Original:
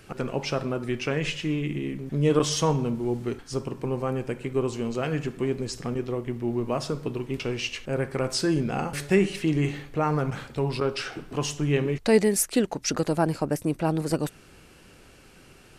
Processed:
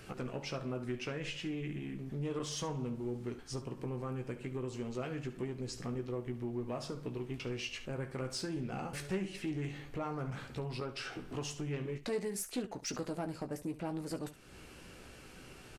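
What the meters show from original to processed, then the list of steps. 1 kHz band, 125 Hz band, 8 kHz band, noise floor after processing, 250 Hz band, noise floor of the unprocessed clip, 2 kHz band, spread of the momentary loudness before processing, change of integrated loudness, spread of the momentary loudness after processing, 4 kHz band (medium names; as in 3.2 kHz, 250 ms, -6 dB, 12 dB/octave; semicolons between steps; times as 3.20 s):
-13.5 dB, -12.0 dB, -13.0 dB, -53 dBFS, -12.5 dB, -52 dBFS, -12.0 dB, 8 LU, -13.0 dB, 5 LU, -11.0 dB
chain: compression 2:1, threshold -43 dBFS, peak gain reduction 16 dB; saturation -27 dBFS, distortion -21 dB; on a send: early reflections 16 ms -7.5 dB, 70 ms -14.5 dB; on the sum: loudspeaker Doppler distortion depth 0.13 ms; trim -1.5 dB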